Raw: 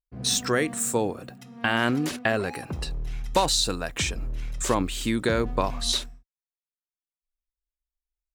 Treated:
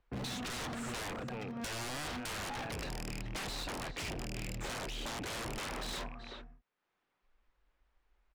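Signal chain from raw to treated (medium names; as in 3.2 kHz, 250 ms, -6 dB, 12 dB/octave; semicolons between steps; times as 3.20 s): rattle on loud lows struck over -29 dBFS, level -13 dBFS; 3.05–5.27 s: peaking EQ 1.2 kHz -11 dB 1.1 oct; peak limiter -15.5 dBFS, peak gain reduction 7 dB; overload inside the chain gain 25 dB; low-pass 1.8 kHz 12 dB/octave; bass shelf 160 Hz -8.5 dB; band-stop 640 Hz, Q 20; echo from a far wall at 65 m, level -15 dB; wavefolder -39 dBFS; three bands compressed up and down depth 70%; trim +3.5 dB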